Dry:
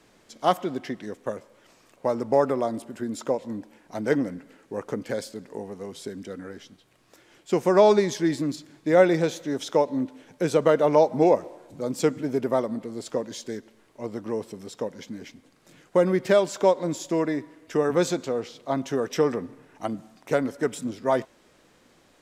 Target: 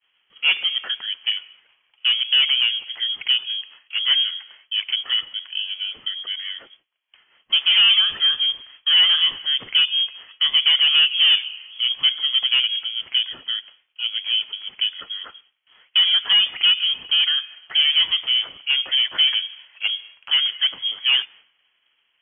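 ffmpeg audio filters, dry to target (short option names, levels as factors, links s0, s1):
-filter_complex "[0:a]asplit=2[s0][s1];[s1]highpass=f=720:p=1,volume=14.1,asoftclip=type=tanh:threshold=0.596[s2];[s0][s2]amix=inputs=2:normalize=0,lowpass=f=1000:p=1,volume=0.501,lowpass=f=3000:t=q:w=0.5098,lowpass=f=3000:t=q:w=0.6013,lowpass=f=3000:t=q:w=0.9,lowpass=f=3000:t=q:w=2.563,afreqshift=-3500,agate=range=0.0224:threshold=0.0126:ratio=3:detection=peak,volume=0.794"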